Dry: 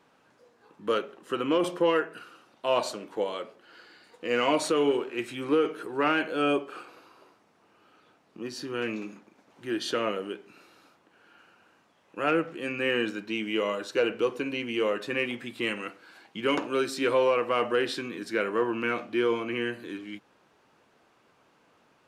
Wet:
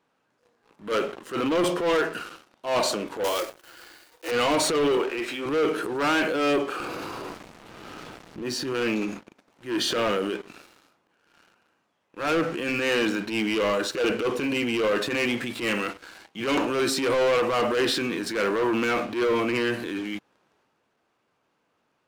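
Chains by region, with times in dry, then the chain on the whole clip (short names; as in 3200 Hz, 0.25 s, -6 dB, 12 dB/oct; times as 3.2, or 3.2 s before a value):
3.24–4.32 block floating point 3-bit + steep high-pass 290 Hz 96 dB/oct + notch 430 Hz, Q 8.9
4.97–5.46 HPF 340 Hz + air absorption 87 m
6.8–8.43 sample leveller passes 3 + low shelf 310 Hz +11 dB + compressor, threshold -38 dBFS
whole clip: sample leveller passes 3; transient shaper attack -10 dB, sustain +4 dB; gain -2.5 dB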